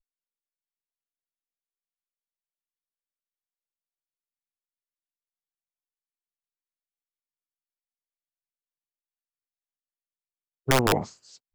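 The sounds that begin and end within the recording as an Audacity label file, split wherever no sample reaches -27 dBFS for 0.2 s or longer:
10.680000	11.030000	sound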